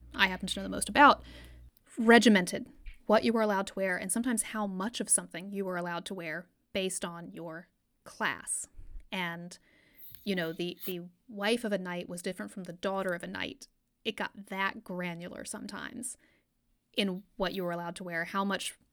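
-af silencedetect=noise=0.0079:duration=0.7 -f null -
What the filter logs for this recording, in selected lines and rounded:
silence_start: 16.14
silence_end: 16.97 | silence_duration: 0.84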